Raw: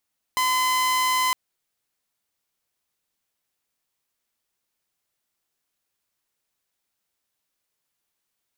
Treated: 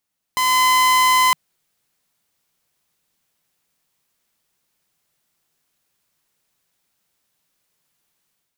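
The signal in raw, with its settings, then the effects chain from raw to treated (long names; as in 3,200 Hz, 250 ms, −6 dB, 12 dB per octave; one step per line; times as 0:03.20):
tone saw 1,020 Hz −17 dBFS 0.96 s
parametric band 160 Hz +7 dB 0.62 octaves
automatic gain control gain up to 8 dB
hard clipping −11.5 dBFS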